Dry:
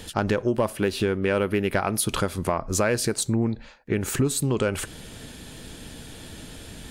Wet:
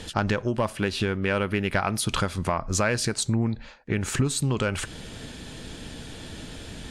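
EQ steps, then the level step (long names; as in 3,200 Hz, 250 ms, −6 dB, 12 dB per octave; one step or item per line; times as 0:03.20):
low-pass filter 7,600 Hz 12 dB per octave
dynamic equaliser 400 Hz, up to −7 dB, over −37 dBFS, Q 0.87
+2.0 dB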